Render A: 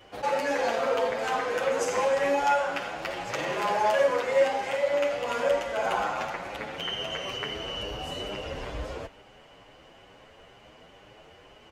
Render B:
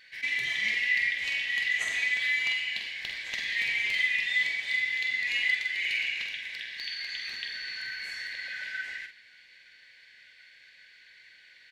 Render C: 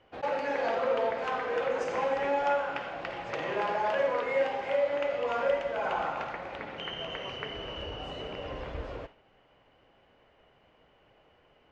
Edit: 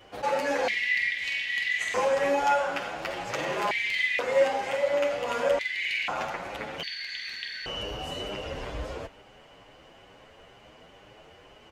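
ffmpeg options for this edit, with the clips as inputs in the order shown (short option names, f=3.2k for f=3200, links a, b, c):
-filter_complex "[1:a]asplit=4[a][b][c][d];[0:a]asplit=5[e][f][g][h][i];[e]atrim=end=0.682[j];[a]atrim=start=0.678:end=1.942[k];[f]atrim=start=1.938:end=3.712[l];[b]atrim=start=3.708:end=4.192[m];[g]atrim=start=4.188:end=5.592[n];[c]atrim=start=5.588:end=6.082[o];[h]atrim=start=6.078:end=6.832[p];[d]atrim=start=6.828:end=7.662[q];[i]atrim=start=7.658[r];[j][k]acrossfade=d=0.004:c1=hsin:c2=hsin[s];[s][l]acrossfade=d=0.004:c1=hsin:c2=hsin[t];[t][m]acrossfade=d=0.004:c1=hsin:c2=hsin[u];[u][n]acrossfade=d=0.004:c1=hsin:c2=hsin[v];[v][o]acrossfade=d=0.004:c1=hsin:c2=hsin[w];[w][p]acrossfade=d=0.004:c1=hsin:c2=hsin[x];[x][q]acrossfade=d=0.004:c1=hsin:c2=hsin[y];[y][r]acrossfade=d=0.004:c1=hsin:c2=hsin"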